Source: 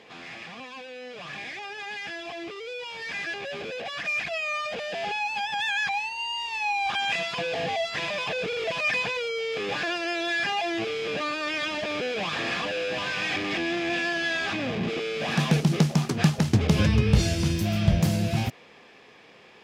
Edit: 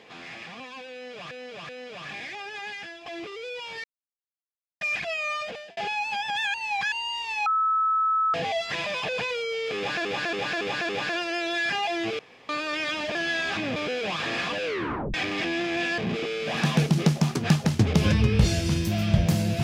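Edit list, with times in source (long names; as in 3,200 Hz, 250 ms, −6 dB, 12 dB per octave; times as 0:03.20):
0:00.93–0:01.31: repeat, 3 plays
0:01.89–0:02.30: fade out, to −10 dB
0:03.08–0:04.05: silence
0:04.63–0:05.01: fade out
0:05.78–0:06.16: reverse
0:06.70–0:07.58: beep over 1,300 Hz −20 dBFS
0:08.42–0:09.04: remove
0:09.63–0:09.91: repeat, 5 plays
0:10.93–0:11.23: fill with room tone
0:12.78: tape stop 0.49 s
0:14.11–0:14.72: move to 0:11.89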